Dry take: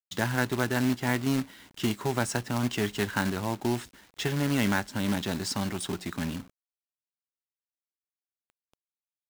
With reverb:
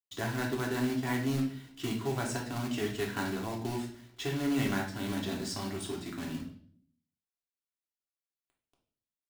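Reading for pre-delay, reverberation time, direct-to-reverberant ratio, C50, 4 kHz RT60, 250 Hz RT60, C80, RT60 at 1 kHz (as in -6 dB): 3 ms, 0.55 s, -2.0 dB, 7.0 dB, 0.50 s, 0.85 s, 12.0 dB, 0.45 s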